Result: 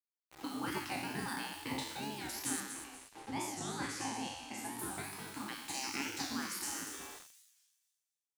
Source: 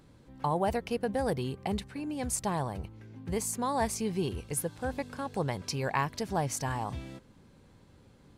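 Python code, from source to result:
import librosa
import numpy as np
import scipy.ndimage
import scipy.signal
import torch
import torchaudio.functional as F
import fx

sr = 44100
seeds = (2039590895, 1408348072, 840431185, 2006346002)

y = fx.spec_trails(x, sr, decay_s=1.19)
y = scipy.signal.sosfilt(scipy.signal.butter(4, 130.0, 'highpass', fs=sr, output='sos'), y)
y = fx.spec_gate(y, sr, threshold_db=-15, keep='weak')
y = fx.dynamic_eq(y, sr, hz=760.0, q=0.95, threshold_db=-54.0, ratio=4.0, max_db=-6)
y = fx.small_body(y, sr, hz=(270.0, 810.0), ring_ms=35, db=17)
y = fx.quant_dither(y, sr, seeds[0], bits=8, dither='none')
y = fx.air_absorb(y, sr, metres=61.0, at=(2.6, 4.8))
y = fx.echo_wet_highpass(y, sr, ms=240, feedback_pct=34, hz=4400.0, wet_db=-8.5)
y = fx.record_warp(y, sr, rpm=45.0, depth_cents=160.0)
y = y * 10.0 ** (-3.0 / 20.0)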